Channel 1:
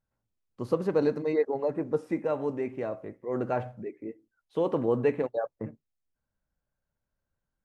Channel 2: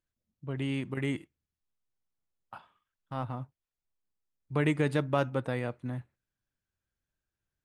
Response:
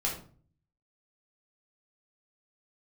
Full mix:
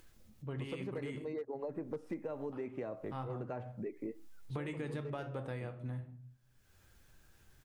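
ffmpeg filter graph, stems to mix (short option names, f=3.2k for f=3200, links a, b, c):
-filter_complex "[0:a]acrossover=split=450[a][b];[b]acompressor=threshold=-38dB:ratio=1.5[c];[a][c]amix=inputs=2:normalize=0,volume=20dB,asoftclip=hard,volume=-20dB,volume=2dB[d];[1:a]acompressor=mode=upward:threshold=-42dB:ratio=2.5,volume=-5.5dB,asplit=3[e][f][g];[f]volume=-8.5dB[h];[g]apad=whole_len=341571[i];[d][i]sidechaincompress=threshold=-42dB:ratio=8:attack=38:release=1250[j];[2:a]atrim=start_sample=2205[k];[h][k]afir=irnorm=-1:irlink=0[l];[j][e][l]amix=inputs=3:normalize=0,acompressor=threshold=-37dB:ratio=10"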